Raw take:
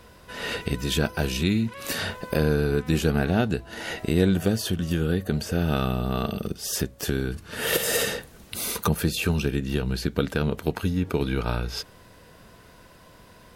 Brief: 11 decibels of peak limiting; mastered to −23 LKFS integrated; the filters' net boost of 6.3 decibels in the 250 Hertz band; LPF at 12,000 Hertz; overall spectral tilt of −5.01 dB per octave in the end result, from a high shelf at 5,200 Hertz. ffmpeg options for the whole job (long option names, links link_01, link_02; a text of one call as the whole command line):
ffmpeg -i in.wav -af "lowpass=12000,equalizer=frequency=250:width_type=o:gain=8.5,highshelf=frequency=5200:gain=3,volume=2.5dB,alimiter=limit=-11dB:level=0:latency=1" out.wav